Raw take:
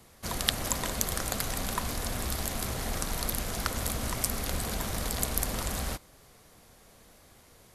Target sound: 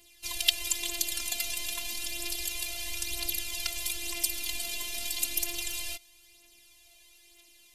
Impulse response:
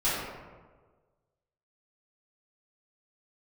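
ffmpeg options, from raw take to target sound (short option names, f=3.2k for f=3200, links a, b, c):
-af "afftfilt=real='hypot(re,im)*cos(PI*b)':imag='0':win_size=512:overlap=0.75,aphaser=in_gain=1:out_gain=1:delay=4.9:decay=0.47:speed=0.31:type=triangular,highshelf=f=1.9k:t=q:w=3:g=10.5,volume=-7.5dB"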